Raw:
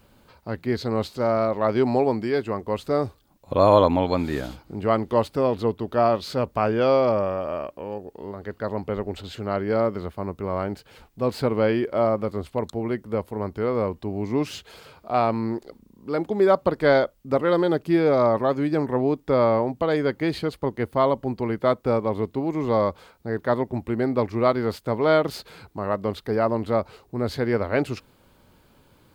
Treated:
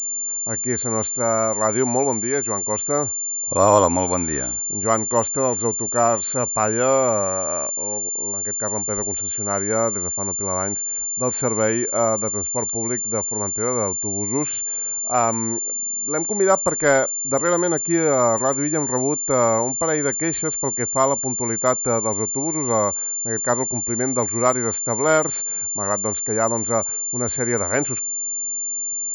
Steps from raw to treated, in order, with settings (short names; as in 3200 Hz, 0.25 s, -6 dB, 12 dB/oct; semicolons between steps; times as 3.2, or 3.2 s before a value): dynamic EQ 1500 Hz, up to +6 dB, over -37 dBFS, Q 0.78; pulse-width modulation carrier 7200 Hz; gain -1 dB